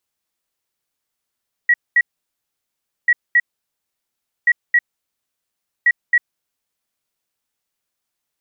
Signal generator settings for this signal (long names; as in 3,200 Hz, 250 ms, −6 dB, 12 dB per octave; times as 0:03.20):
beeps in groups sine 1,920 Hz, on 0.05 s, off 0.22 s, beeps 2, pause 1.07 s, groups 4, −9 dBFS